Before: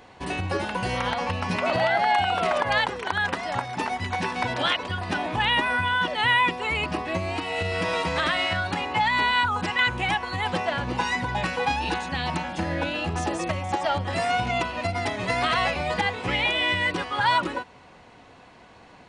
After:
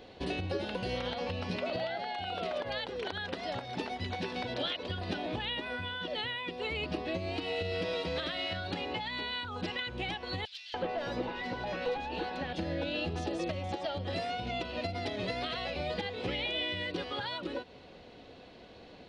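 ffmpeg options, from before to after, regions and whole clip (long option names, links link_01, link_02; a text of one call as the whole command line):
ffmpeg -i in.wav -filter_complex "[0:a]asettb=1/sr,asplit=3[link_01][link_02][link_03];[link_01]atrim=end=10.454[link_04];[link_02]atrim=start=10.45:end=12.53,asetpts=PTS-STARTPTS,afade=type=in:duration=0.004:curve=qsin,afade=type=out:start_time=2.076:duration=0.004:curve=qsin,asplit=2[link_05][link_06];[link_06]highpass=frequency=720:poles=1,volume=17dB,asoftclip=type=tanh:threshold=-11.5dB[link_07];[link_05][link_07]amix=inputs=2:normalize=0,lowpass=frequency=1200:poles=1,volume=-6dB,acrossover=split=3300[link_08][link_09];[link_08]adelay=290[link_10];[link_10][link_09]amix=inputs=2:normalize=0,atrim=end_sample=91728[link_11];[link_03]atrim=start=12.526[link_12];[link_04][link_11]acrossfade=duration=0.004:curve1=hsin:curve2=qsin[link_13];[link_13][link_12]acrossfade=duration=0.004:curve1=qsin:curve2=hsin,highshelf=frequency=5800:gain=-7,acompressor=threshold=-30dB:ratio=6,equalizer=frequency=125:width_type=o:width=1:gain=-4,equalizer=frequency=500:width_type=o:width=1:gain=5,equalizer=frequency=1000:width_type=o:width=1:gain=-11,equalizer=frequency=2000:width_type=o:width=1:gain=-5,equalizer=frequency=4000:width_type=o:width=1:gain=8,equalizer=frequency=8000:width_type=o:width=1:gain=-10" out.wav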